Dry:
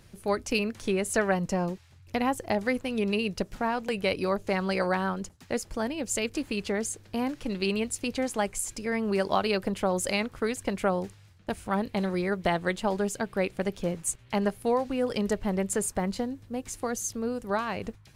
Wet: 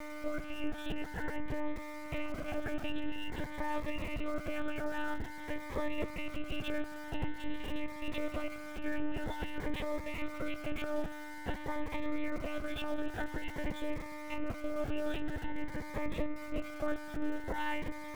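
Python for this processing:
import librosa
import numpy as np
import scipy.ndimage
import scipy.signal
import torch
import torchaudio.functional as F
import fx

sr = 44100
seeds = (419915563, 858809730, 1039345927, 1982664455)

y = fx.freq_snap(x, sr, grid_st=4)
y = scipy.signal.sosfilt(scipy.signal.butter(4, 45.0, 'highpass', fs=sr, output='sos'), y)
y = fx.notch(y, sr, hz=1600.0, q=13.0)
y = fx.over_compress(y, sr, threshold_db=-29.0, ratio=-1.0)
y = fx.dmg_buzz(y, sr, base_hz=100.0, harmonics=23, level_db=-37.0, tilt_db=-2, odd_only=False)
y = fx.lowpass(y, sr, hz=2200.0, slope=6)
y = fx.hum_notches(y, sr, base_hz=60, count=5)
y = fx.lpc_monotone(y, sr, seeds[0], pitch_hz=300.0, order=8)
y = np.where(np.abs(y) >= 10.0 ** (-43.5 / 20.0), y, 0.0)
y = fx.notch_cascade(y, sr, direction='rising', hz=0.49)
y = y * 10.0 ** (-3.5 / 20.0)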